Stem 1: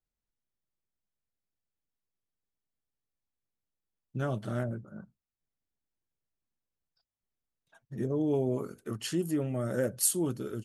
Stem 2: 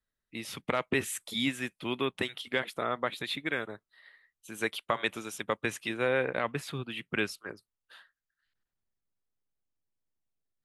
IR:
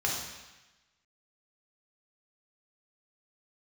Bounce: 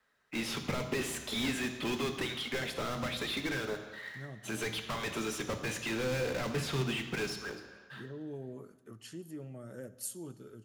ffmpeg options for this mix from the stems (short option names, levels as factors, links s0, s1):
-filter_complex "[0:a]volume=0.2,asplit=2[s0][s1];[s1]volume=0.0891[s2];[1:a]acrusher=bits=2:mode=log:mix=0:aa=0.000001,asplit=2[s3][s4];[s4]highpass=f=720:p=1,volume=50.1,asoftclip=type=tanh:threshold=0.299[s5];[s3][s5]amix=inputs=2:normalize=0,lowpass=f=1300:p=1,volume=0.501,volume=0.335,afade=t=out:st=7.12:d=0.71:silence=0.316228,asplit=2[s6][s7];[s7]volume=0.299[s8];[2:a]atrim=start_sample=2205[s9];[s2][s8]amix=inputs=2:normalize=0[s10];[s10][s9]afir=irnorm=-1:irlink=0[s11];[s0][s6][s11]amix=inputs=3:normalize=0,acrossover=split=380|3000[s12][s13][s14];[s13]acompressor=threshold=0.00355:ratio=2[s15];[s12][s15][s14]amix=inputs=3:normalize=0"